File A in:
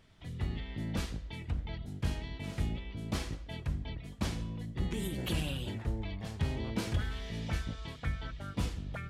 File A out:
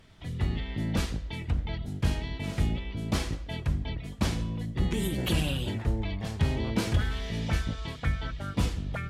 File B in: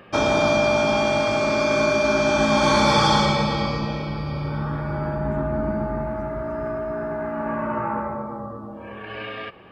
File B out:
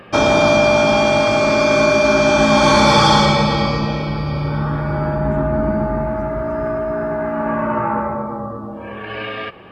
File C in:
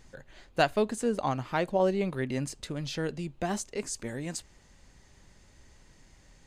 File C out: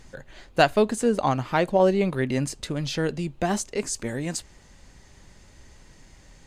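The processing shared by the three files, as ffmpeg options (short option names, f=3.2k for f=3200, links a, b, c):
-af "acontrast=38,volume=1dB" -ar 48000 -c:a libvorbis -b:a 128k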